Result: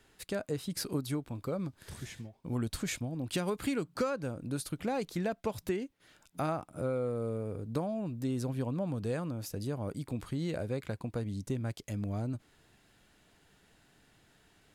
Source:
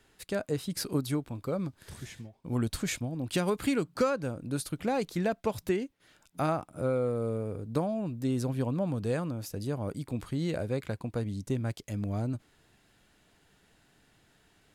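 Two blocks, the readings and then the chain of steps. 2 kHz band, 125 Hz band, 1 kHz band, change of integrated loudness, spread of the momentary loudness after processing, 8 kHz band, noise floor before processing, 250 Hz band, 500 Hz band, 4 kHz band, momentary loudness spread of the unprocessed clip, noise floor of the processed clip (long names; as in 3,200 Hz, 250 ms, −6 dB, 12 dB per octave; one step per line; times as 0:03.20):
−3.5 dB, −3.0 dB, −4.0 dB, −3.5 dB, 5 LU, −2.5 dB, −67 dBFS, −3.5 dB, −4.0 dB, −2.5 dB, 7 LU, −67 dBFS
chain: downward compressor 1.5 to 1, threshold −36 dBFS, peak gain reduction 5.5 dB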